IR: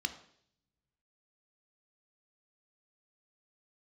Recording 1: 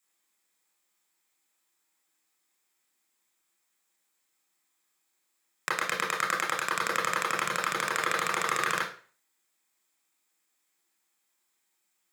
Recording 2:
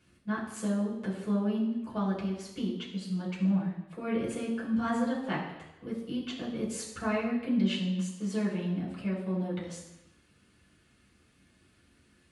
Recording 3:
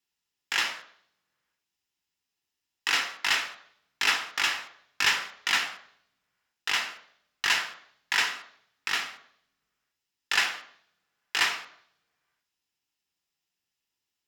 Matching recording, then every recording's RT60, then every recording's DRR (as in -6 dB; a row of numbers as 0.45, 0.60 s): 3; 0.40, 0.90, 0.65 s; -3.5, -7.0, 8.0 dB